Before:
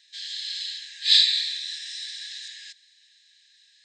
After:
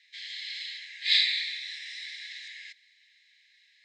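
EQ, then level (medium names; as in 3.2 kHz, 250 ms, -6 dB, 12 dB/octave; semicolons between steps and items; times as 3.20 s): resonant high-pass 2.1 kHz, resonance Q 9.7; distance through air 68 m; -7.5 dB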